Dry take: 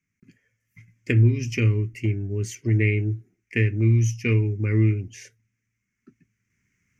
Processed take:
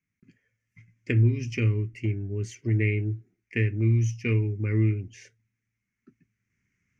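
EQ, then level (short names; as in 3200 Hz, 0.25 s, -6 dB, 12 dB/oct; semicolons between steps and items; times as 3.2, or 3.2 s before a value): air absorption 66 m; -3.5 dB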